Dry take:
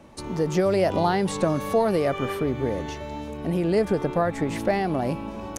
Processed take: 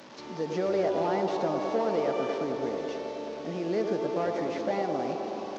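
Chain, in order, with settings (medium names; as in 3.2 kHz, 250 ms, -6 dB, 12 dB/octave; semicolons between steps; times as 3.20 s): one-bit delta coder 32 kbps, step -34.5 dBFS; high-pass 220 Hz 12 dB/octave; on a send: feedback echo behind a band-pass 107 ms, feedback 83%, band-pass 570 Hz, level -4 dB; on the sum: trim -7 dB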